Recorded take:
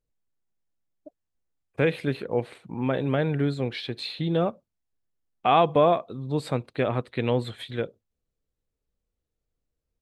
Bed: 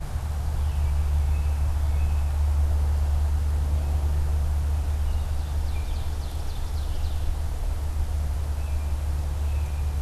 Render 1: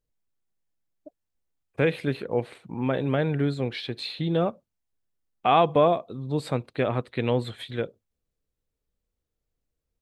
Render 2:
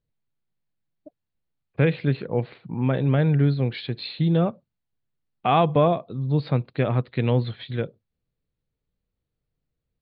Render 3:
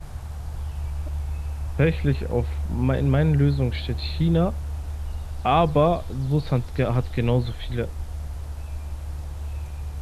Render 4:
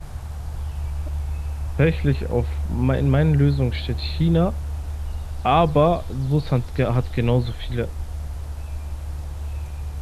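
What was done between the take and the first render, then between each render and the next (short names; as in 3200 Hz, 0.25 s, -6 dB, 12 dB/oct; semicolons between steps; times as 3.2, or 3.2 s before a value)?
5.87–6.39 dynamic EQ 1600 Hz, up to -7 dB, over -39 dBFS, Q 0.95
elliptic low-pass 4500 Hz, stop band 40 dB; bell 140 Hz +9.5 dB 1.3 oct
add bed -5.5 dB
gain +2 dB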